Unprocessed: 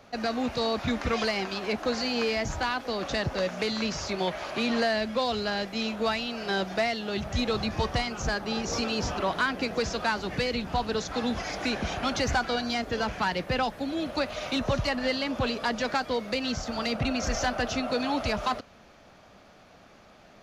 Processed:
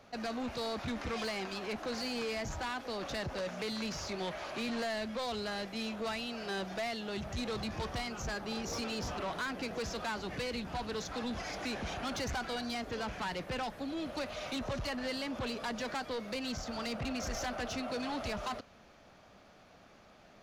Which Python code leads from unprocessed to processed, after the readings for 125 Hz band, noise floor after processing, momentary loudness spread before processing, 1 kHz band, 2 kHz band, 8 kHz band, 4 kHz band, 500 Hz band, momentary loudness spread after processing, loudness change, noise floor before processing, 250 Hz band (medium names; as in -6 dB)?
-9.0 dB, -59 dBFS, 3 LU, -9.0 dB, -9.0 dB, -6.5 dB, -8.5 dB, -9.0 dB, 2 LU, -8.5 dB, -54 dBFS, -8.5 dB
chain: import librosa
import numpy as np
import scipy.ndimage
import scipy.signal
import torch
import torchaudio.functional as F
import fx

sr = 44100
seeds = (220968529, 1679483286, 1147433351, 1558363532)

y = 10.0 ** (-27.5 / 20.0) * np.tanh(x / 10.0 ** (-27.5 / 20.0))
y = y * 10.0 ** (-5.0 / 20.0)